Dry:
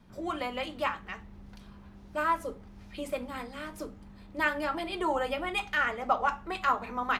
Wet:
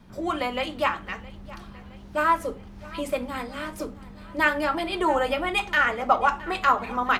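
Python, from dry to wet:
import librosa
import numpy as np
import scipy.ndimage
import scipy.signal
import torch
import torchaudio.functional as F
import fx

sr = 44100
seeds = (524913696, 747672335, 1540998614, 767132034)

y = fx.echo_feedback(x, sr, ms=666, feedback_pct=56, wet_db=-20)
y = F.gain(torch.from_numpy(y), 6.5).numpy()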